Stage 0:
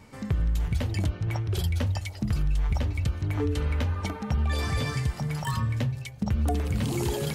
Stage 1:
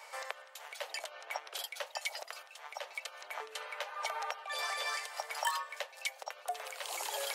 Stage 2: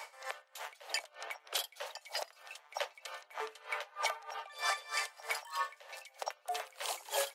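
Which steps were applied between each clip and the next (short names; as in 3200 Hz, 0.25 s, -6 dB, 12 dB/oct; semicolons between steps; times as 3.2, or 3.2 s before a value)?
compressor 10:1, threshold -31 dBFS, peak gain reduction 10.5 dB; steep high-pass 550 Hz 48 dB/oct; gain +5.5 dB
limiter -28 dBFS, peak gain reduction 10 dB; echo 92 ms -20 dB; dB-linear tremolo 3.2 Hz, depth 23 dB; gain +7.5 dB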